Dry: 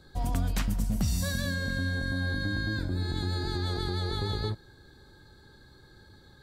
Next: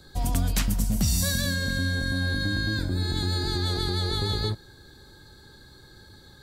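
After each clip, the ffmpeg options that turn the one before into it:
-filter_complex "[0:a]acrossover=split=530|1600[s0][s1][s2];[s1]asoftclip=type=tanh:threshold=0.0126[s3];[s2]highshelf=f=3500:g=7.5[s4];[s0][s3][s4]amix=inputs=3:normalize=0,volume=1.5"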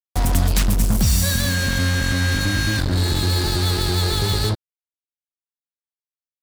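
-filter_complex "[0:a]acrossover=split=120[s0][s1];[s1]acompressor=threshold=0.02:ratio=1.5[s2];[s0][s2]amix=inputs=2:normalize=0,acrusher=bits=4:mix=0:aa=0.5,volume=2.51"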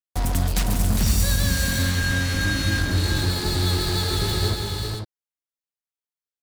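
-af "aecho=1:1:148|406|497:0.251|0.531|0.473,volume=0.596"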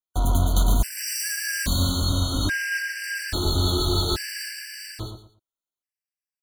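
-af "aecho=1:1:3:0.31,aecho=1:1:116|232|348:0.501|0.125|0.0313,afftfilt=real='re*gt(sin(2*PI*0.6*pts/sr)*(1-2*mod(floor(b*sr/1024/1500),2)),0)':imag='im*gt(sin(2*PI*0.6*pts/sr)*(1-2*mod(floor(b*sr/1024/1500),2)),0)':win_size=1024:overlap=0.75"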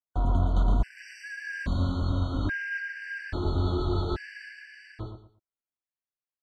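-af "lowpass=1800,volume=0.668"

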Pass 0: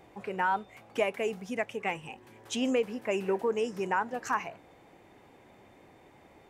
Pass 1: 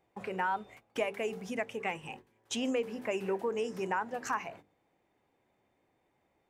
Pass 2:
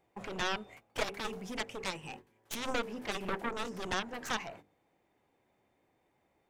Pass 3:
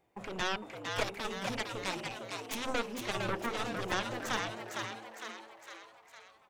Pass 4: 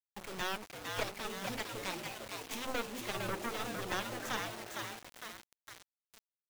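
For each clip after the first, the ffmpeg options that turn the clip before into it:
-af "agate=range=0.112:threshold=0.00398:ratio=16:detection=peak,bandreject=f=50:t=h:w=6,bandreject=f=100:t=h:w=6,bandreject=f=150:t=h:w=6,bandreject=f=200:t=h:w=6,bandreject=f=250:t=h:w=6,bandreject=f=300:t=h:w=6,bandreject=f=350:t=h:w=6,bandreject=f=400:t=h:w=6,bandreject=f=450:t=h:w=6,acompressor=threshold=0.0112:ratio=1.5,volume=1.19"
-af "aeval=exprs='0.112*(cos(1*acos(clip(val(0)/0.112,-1,1)))-cos(1*PI/2))+0.0178*(cos(6*acos(clip(val(0)/0.112,-1,1)))-cos(6*PI/2))+0.0398*(cos(7*acos(clip(val(0)/0.112,-1,1)))-cos(7*PI/2))':c=same,volume=0.708"
-filter_complex "[0:a]asplit=8[s0][s1][s2][s3][s4][s5][s6][s7];[s1]adelay=457,afreqshift=110,volume=0.596[s8];[s2]adelay=914,afreqshift=220,volume=0.32[s9];[s3]adelay=1371,afreqshift=330,volume=0.174[s10];[s4]adelay=1828,afreqshift=440,volume=0.0933[s11];[s5]adelay=2285,afreqshift=550,volume=0.0507[s12];[s6]adelay=2742,afreqshift=660,volume=0.0272[s13];[s7]adelay=3199,afreqshift=770,volume=0.0148[s14];[s0][s8][s9][s10][s11][s12][s13][s14]amix=inputs=8:normalize=0"
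-af "acrusher=bits=6:mix=0:aa=0.000001,volume=0.668"

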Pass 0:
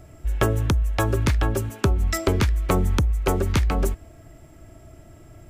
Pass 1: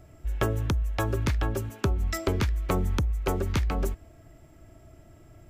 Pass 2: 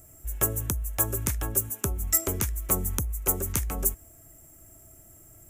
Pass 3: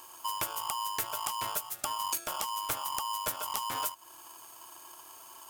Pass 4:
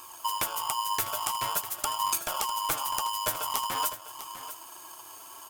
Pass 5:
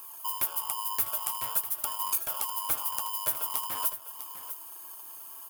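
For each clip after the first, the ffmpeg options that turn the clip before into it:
-af "equalizer=f=9100:w=2:g=-4,volume=0.531"
-af "aexciter=amount=10.9:drive=7.6:freq=6600,volume=0.596"
-af "acompressor=threshold=0.0224:ratio=6,aeval=exprs='val(0)*sgn(sin(2*PI*1000*n/s))':c=same,volume=1.19"
-af "flanger=delay=0.8:depth=9.1:regen=50:speed=0.47:shape=sinusoidal,aecho=1:1:651:0.237,volume=2.51"
-af "aexciter=amount=2.1:drive=9.4:freq=9700,volume=0.447"

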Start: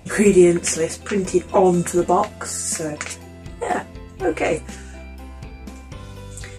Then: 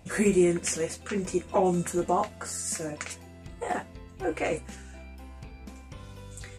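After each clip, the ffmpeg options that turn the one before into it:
-af "equalizer=f=380:w=4.1:g=-2.5,volume=0.398"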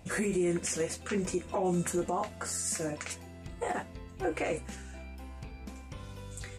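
-af "alimiter=limit=0.0794:level=0:latency=1:release=82"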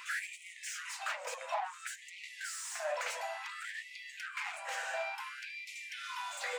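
-filter_complex "[0:a]acompressor=threshold=0.01:ratio=10,asplit=2[s0][s1];[s1]highpass=f=720:p=1,volume=25.1,asoftclip=type=tanh:threshold=0.0596[s2];[s0][s2]amix=inputs=2:normalize=0,lowpass=f=1500:p=1,volume=0.501,afftfilt=real='re*gte(b*sr/1024,470*pow(1900/470,0.5+0.5*sin(2*PI*0.57*pts/sr)))':imag='im*gte(b*sr/1024,470*pow(1900/470,0.5+0.5*sin(2*PI*0.57*pts/sr)))':win_size=1024:overlap=0.75,volume=1.19"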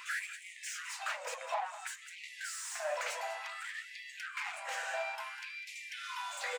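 -af "aecho=1:1:199:0.188"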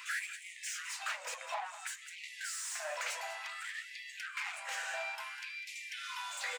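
-af "highpass=f=1400:p=1,volume=1.26"

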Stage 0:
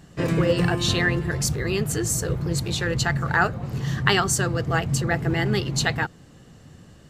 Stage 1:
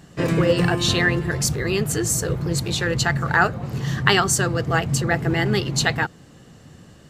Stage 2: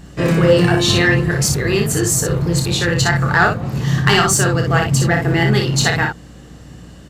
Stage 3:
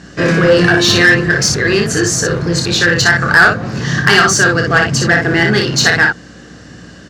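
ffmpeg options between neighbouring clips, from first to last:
-af "lowshelf=f=78:g=-6.5,volume=1.41"
-filter_complex "[0:a]acontrast=82,aeval=exprs='val(0)+0.0141*(sin(2*PI*60*n/s)+sin(2*PI*2*60*n/s)/2+sin(2*PI*3*60*n/s)/3+sin(2*PI*4*60*n/s)/4+sin(2*PI*5*60*n/s)/5)':c=same,asplit=2[s0][s1];[s1]aecho=0:1:29|60:0.473|0.562[s2];[s0][s2]amix=inputs=2:normalize=0,volume=0.708"
-af "aexciter=amount=1.2:drive=6.9:freq=4600,highpass=100,equalizer=f=140:t=q:w=4:g=-7,equalizer=f=870:t=q:w=4:g=-4,equalizer=f=1600:t=q:w=4:g=9,lowpass=f=7600:w=0.5412,lowpass=f=7600:w=1.3066,acontrast=55,volume=0.891"

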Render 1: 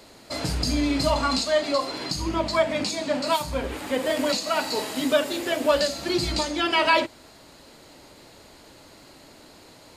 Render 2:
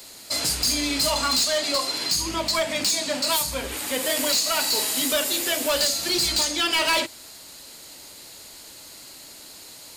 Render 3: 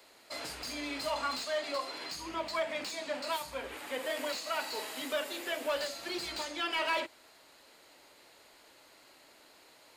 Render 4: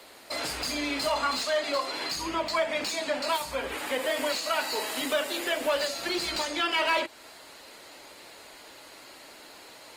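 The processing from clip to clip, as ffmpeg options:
-filter_complex "[0:a]acrossover=split=260|1600|3200[s0][s1][s2][s3];[s0]alimiter=level_in=1.41:limit=0.0631:level=0:latency=1,volume=0.708[s4];[s4][s1][s2][s3]amix=inputs=4:normalize=0,crystalizer=i=6.5:c=0,asoftclip=type=hard:threshold=0.2,volume=0.631"
-filter_complex "[0:a]acrossover=split=320 2900:gain=0.251 1 0.178[s0][s1][s2];[s0][s1][s2]amix=inputs=3:normalize=0,volume=0.422"
-filter_complex "[0:a]asplit=2[s0][s1];[s1]acompressor=threshold=0.00794:ratio=6,volume=1.19[s2];[s0][s2]amix=inputs=2:normalize=0,volume=1.58" -ar 48000 -c:a libopus -b:a 24k

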